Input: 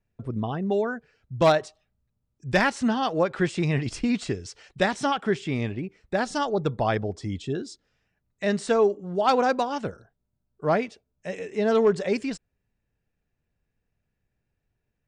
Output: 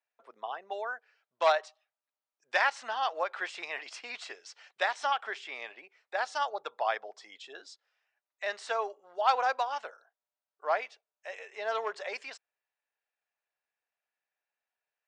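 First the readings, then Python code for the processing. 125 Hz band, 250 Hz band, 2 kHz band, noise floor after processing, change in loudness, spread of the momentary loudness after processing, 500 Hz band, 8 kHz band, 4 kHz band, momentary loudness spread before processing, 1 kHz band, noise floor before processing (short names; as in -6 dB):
under -40 dB, under -30 dB, -3.0 dB, under -85 dBFS, -7.0 dB, 19 LU, -11.0 dB, -9.0 dB, -4.5 dB, 14 LU, -3.5 dB, -80 dBFS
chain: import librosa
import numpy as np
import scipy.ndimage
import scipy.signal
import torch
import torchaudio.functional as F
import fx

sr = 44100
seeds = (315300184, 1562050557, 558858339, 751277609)

y = scipy.signal.sosfilt(scipy.signal.butter(4, 680.0, 'highpass', fs=sr, output='sos'), x)
y = fx.air_absorb(y, sr, metres=91.0)
y = F.gain(torch.from_numpy(y), -2.0).numpy()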